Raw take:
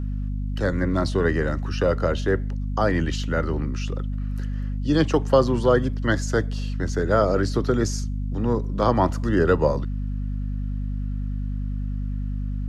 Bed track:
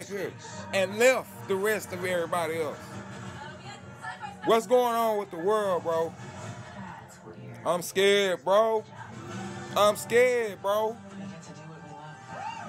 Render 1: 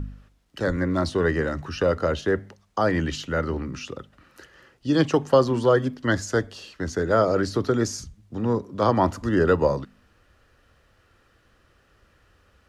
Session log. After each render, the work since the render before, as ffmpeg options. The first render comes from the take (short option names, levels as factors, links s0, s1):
-af "bandreject=f=50:t=h:w=4,bandreject=f=100:t=h:w=4,bandreject=f=150:t=h:w=4,bandreject=f=200:t=h:w=4,bandreject=f=250:t=h:w=4"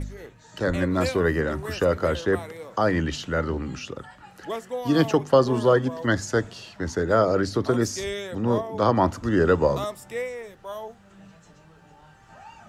-filter_complex "[1:a]volume=0.355[s0];[0:a][s0]amix=inputs=2:normalize=0"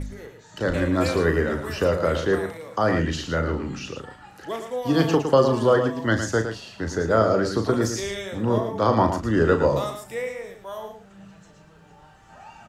-filter_complex "[0:a]asplit=2[s0][s1];[s1]adelay=36,volume=0.376[s2];[s0][s2]amix=inputs=2:normalize=0,aecho=1:1:111:0.398"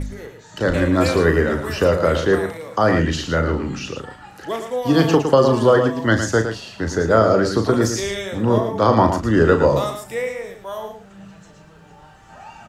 -af "volume=1.78,alimiter=limit=0.708:level=0:latency=1"